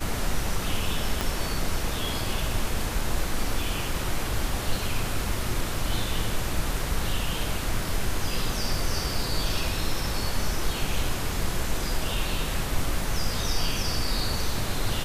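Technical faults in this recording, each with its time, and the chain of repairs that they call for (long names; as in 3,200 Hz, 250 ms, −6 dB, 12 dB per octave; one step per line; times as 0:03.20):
0:01.21: click −10 dBFS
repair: click removal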